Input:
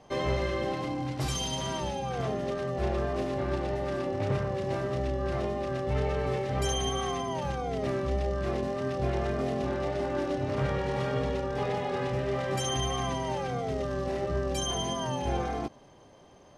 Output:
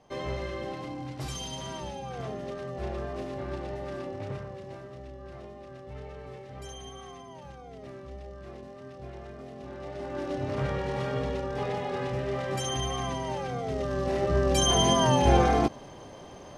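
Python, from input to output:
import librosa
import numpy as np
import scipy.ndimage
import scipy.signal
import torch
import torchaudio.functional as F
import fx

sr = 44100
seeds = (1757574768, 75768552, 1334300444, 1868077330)

y = fx.gain(x, sr, db=fx.line((4.03, -5.0), (4.93, -13.5), (9.52, -13.5), (10.39, -1.0), (13.59, -1.0), (14.9, 9.5)))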